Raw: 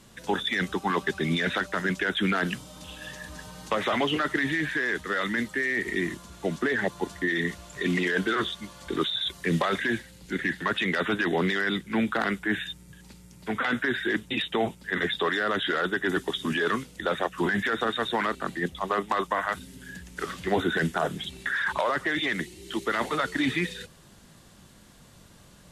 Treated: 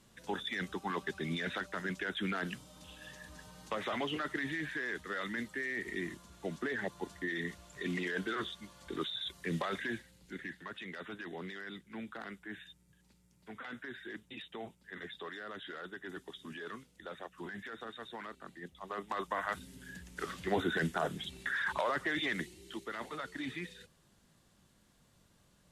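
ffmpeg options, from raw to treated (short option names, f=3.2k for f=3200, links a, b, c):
-af "volume=1dB,afade=t=out:st=9.84:d=0.83:silence=0.398107,afade=t=in:st=18.75:d=0.81:silence=0.266073,afade=t=out:st=22.4:d=0.45:silence=0.421697"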